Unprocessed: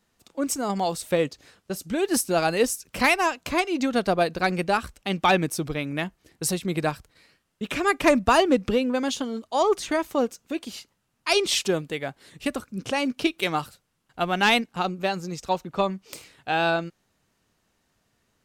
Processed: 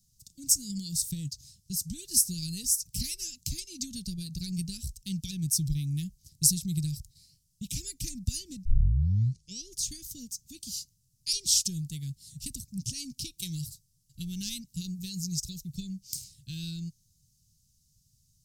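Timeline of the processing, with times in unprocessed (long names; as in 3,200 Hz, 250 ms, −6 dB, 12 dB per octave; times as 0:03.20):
0:08.65: tape start 1.13 s
0:14.66–0:15.83: high-shelf EQ 11,000 Hz +7.5 dB
whole clip: downward compressor 6 to 1, threshold −22 dBFS; Chebyshev band-stop filter 140–5,300 Hz, order 3; level +7.5 dB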